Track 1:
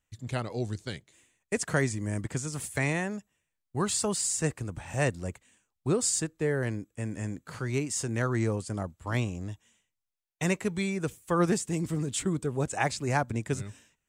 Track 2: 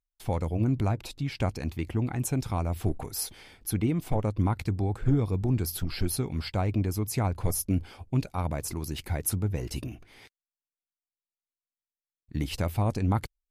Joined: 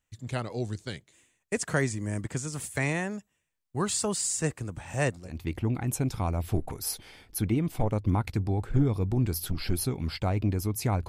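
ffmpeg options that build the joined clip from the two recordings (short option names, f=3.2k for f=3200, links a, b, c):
-filter_complex "[0:a]apad=whole_dur=11.08,atrim=end=11.08,atrim=end=5.46,asetpts=PTS-STARTPTS[a];[1:a]atrim=start=1.4:end=7.4,asetpts=PTS-STARTPTS[b];[a][b]acrossfade=d=0.38:c1=qua:c2=qua"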